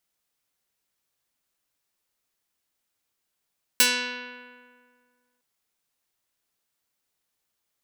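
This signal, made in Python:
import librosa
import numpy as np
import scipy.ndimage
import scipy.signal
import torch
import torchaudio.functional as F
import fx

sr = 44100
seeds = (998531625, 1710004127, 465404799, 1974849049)

y = fx.pluck(sr, length_s=1.61, note=59, decay_s=1.92, pick=0.39, brightness='medium')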